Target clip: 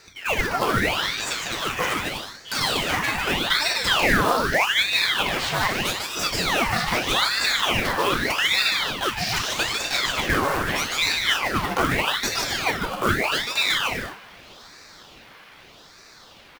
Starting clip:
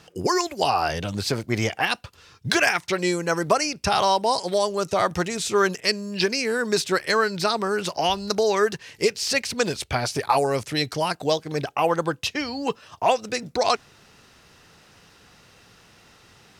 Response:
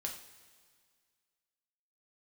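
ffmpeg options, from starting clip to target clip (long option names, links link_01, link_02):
-filter_complex "[0:a]acrossover=split=540 3800:gain=0.0891 1 0.0794[link_01][link_02][link_03];[link_01][link_02][link_03]amix=inputs=3:normalize=0,dynaudnorm=framelen=200:gausssize=21:maxgain=4dB,asplit=2[link_04][link_05];[link_05]alimiter=limit=-12.5dB:level=0:latency=1,volume=0dB[link_06];[link_04][link_06]amix=inputs=2:normalize=0,acompressor=threshold=-26dB:ratio=2,acrossover=split=1100[link_07][link_08];[link_08]aeval=exprs='0.0841*(abs(mod(val(0)/0.0841+3,4)-2)-1)':channel_layout=same[link_09];[link_07][link_09]amix=inputs=2:normalize=0,acrusher=bits=3:mode=log:mix=0:aa=0.000001,aecho=1:1:150|247.5|310.9|352.1|378.8:0.631|0.398|0.251|0.158|0.1[link_10];[1:a]atrim=start_sample=2205,atrim=end_sample=4410[link_11];[link_10][link_11]afir=irnorm=-1:irlink=0,aeval=exprs='val(0)*sin(2*PI*1700*n/s+1700*0.85/0.81*sin(2*PI*0.81*n/s))':channel_layout=same,volume=4.5dB"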